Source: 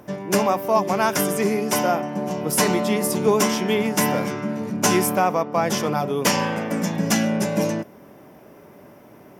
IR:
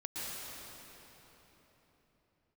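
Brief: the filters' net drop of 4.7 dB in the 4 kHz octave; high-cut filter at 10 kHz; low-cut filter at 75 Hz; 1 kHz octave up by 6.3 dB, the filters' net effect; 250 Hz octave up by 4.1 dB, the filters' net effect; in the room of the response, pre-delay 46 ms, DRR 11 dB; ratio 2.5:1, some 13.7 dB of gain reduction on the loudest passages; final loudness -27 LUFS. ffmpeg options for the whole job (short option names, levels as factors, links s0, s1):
-filter_complex "[0:a]highpass=75,lowpass=10000,equalizer=f=250:t=o:g=5,equalizer=f=1000:t=o:g=8,equalizer=f=4000:t=o:g=-7.5,acompressor=threshold=0.0251:ratio=2.5,asplit=2[s0][s1];[1:a]atrim=start_sample=2205,adelay=46[s2];[s1][s2]afir=irnorm=-1:irlink=0,volume=0.211[s3];[s0][s3]amix=inputs=2:normalize=0,volume=1.33"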